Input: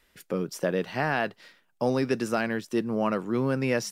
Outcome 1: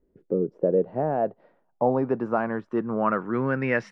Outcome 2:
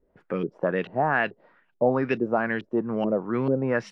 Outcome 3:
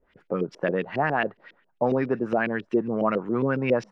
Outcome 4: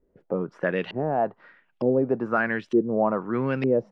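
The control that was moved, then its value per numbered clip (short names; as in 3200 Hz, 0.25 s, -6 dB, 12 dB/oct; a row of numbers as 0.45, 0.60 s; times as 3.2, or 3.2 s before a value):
LFO low-pass, rate: 0.2, 2.3, 7.3, 1.1 Hz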